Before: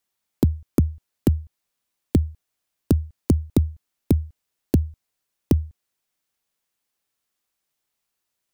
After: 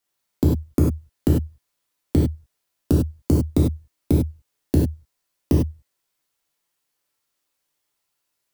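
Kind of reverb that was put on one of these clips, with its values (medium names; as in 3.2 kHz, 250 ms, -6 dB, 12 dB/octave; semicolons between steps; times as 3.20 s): gated-style reverb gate 120 ms flat, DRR -4.5 dB; trim -2.5 dB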